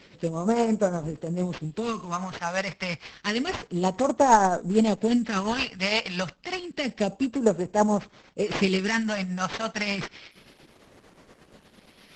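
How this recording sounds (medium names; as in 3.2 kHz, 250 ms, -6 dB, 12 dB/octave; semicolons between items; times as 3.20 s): phasing stages 2, 0.29 Hz, lowest notch 340–2700 Hz; tremolo triangle 8.6 Hz, depth 55%; aliases and images of a low sample rate 7.5 kHz, jitter 0%; Opus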